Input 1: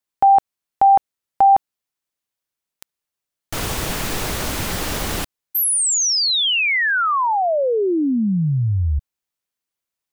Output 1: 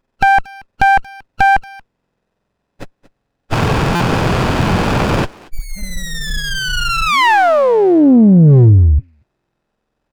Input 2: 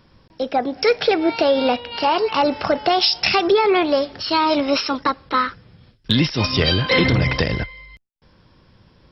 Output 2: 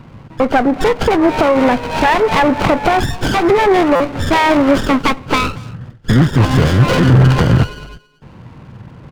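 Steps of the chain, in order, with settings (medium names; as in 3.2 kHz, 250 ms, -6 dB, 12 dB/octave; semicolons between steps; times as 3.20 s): knee-point frequency compression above 1.3 kHz 4:1; compression 5:1, threshold -20 dBFS; graphic EQ 125/250/1000 Hz +12/+5/+9 dB; sine folder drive 7 dB, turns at -2 dBFS; speakerphone echo 230 ms, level -18 dB; buffer glitch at 3.95 s, samples 256, times 8; sliding maximum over 17 samples; trim -2 dB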